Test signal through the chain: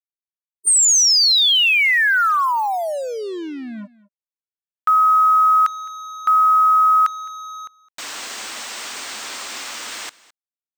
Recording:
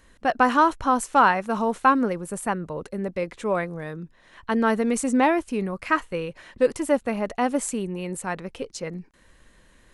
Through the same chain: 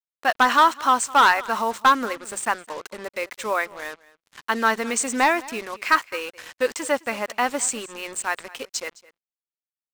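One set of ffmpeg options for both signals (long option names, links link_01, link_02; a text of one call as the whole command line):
ffmpeg -i in.wav -filter_complex "[0:a]afftfilt=real='re*between(b*sr/4096,200,8900)':imag='im*between(b*sr/4096,200,8900)':win_size=4096:overlap=0.75,tiltshelf=frequency=970:gain=-9,acrossover=split=1400[link_01][link_02];[link_01]crystalizer=i=10:c=0[link_03];[link_03][link_02]amix=inputs=2:normalize=0,acrusher=bits=5:mix=0:aa=0.5,volume=9.5dB,asoftclip=hard,volume=-9.5dB,asplit=2[link_04][link_05];[link_05]aecho=0:1:212:0.0891[link_06];[link_04][link_06]amix=inputs=2:normalize=0" out.wav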